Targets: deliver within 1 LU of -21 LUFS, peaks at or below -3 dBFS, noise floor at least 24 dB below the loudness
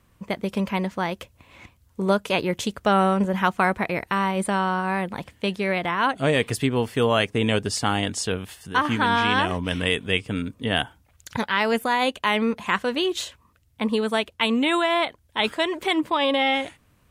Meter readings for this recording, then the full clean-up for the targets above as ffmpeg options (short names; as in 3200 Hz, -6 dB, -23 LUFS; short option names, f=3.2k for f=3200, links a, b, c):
loudness -23.5 LUFS; peak -6.5 dBFS; loudness target -21.0 LUFS
-> -af "volume=2.5dB"